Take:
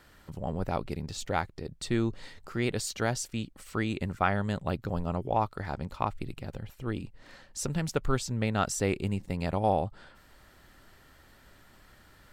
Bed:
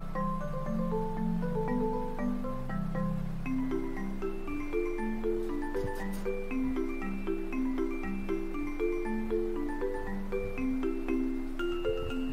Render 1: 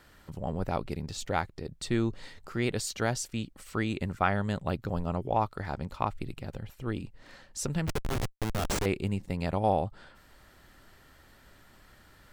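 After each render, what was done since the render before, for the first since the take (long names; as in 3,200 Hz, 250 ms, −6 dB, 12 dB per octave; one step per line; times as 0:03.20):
0:07.87–0:08.86: comparator with hysteresis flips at −29.5 dBFS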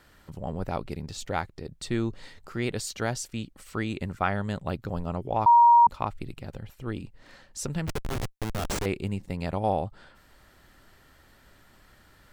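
0:05.46–0:05.87: beep over 945 Hz −12.5 dBFS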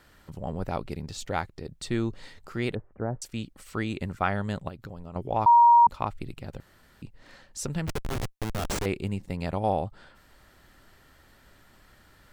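0:02.75–0:03.22: Gaussian smoothing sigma 7.8 samples
0:04.68–0:05.16: downward compressor, threshold −36 dBFS
0:06.60–0:07.02: fill with room tone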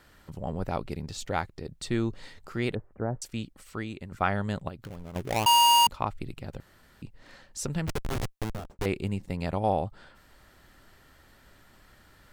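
0:03.34–0:04.12: fade out, to −10.5 dB
0:04.84–0:05.89: gap after every zero crossing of 0.28 ms
0:08.39–0:08.79: fade out and dull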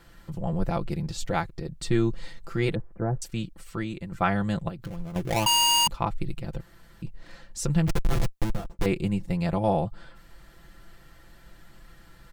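low-shelf EQ 150 Hz +8.5 dB
comb filter 5.9 ms, depth 73%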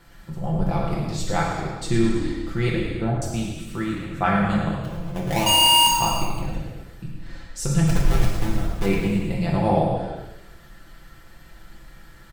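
echo with shifted repeats 108 ms, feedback 47%, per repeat −35 Hz, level −9 dB
reverb whose tail is shaped and stops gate 440 ms falling, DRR −2.5 dB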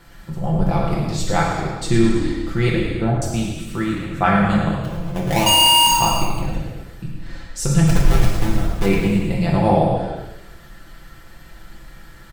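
level +4.5 dB
brickwall limiter −3 dBFS, peak gain reduction 3 dB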